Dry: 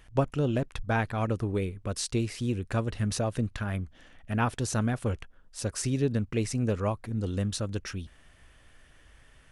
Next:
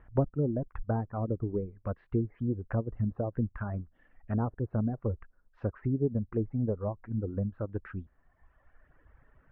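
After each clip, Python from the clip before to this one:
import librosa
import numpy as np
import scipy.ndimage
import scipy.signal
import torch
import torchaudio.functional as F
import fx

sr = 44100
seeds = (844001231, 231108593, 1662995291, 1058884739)

y = fx.env_lowpass_down(x, sr, base_hz=590.0, full_db=-25.0)
y = scipy.signal.sosfilt(scipy.signal.butter(4, 1600.0, 'lowpass', fs=sr, output='sos'), y)
y = fx.dereverb_blind(y, sr, rt60_s=1.5)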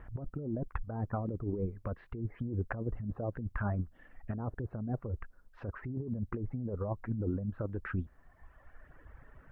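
y = fx.over_compress(x, sr, threshold_db=-36.0, ratio=-1.0)
y = y * 10.0 ** (1.0 / 20.0)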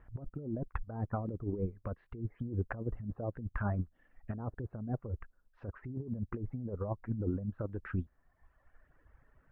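y = fx.upward_expand(x, sr, threshold_db=-52.0, expansion=1.5)
y = y * 10.0 ** (1.0 / 20.0)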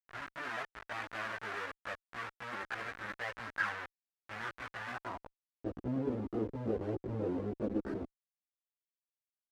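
y = fx.schmitt(x, sr, flips_db=-45.5)
y = fx.chorus_voices(y, sr, voices=4, hz=0.34, base_ms=17, depth_ms=2.3, mix_pct=60)
y = fx.filter_sweep_bandpass(y, sr, from_hz=1600.0, to_hz=340.0, start_s=4.9, end_s=5.62, q=2.1)
y = y * 10.0 ** (15.5 / 20.0)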